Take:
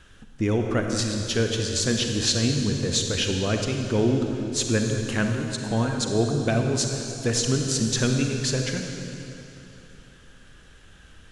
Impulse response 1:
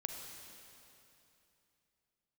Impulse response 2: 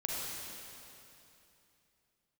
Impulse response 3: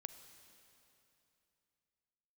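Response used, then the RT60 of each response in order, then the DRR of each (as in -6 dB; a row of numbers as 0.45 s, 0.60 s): 1; 2.9 s, 2.9 s, 2.9 s; 3.0 dB, -4.5 dB, 10.0 dB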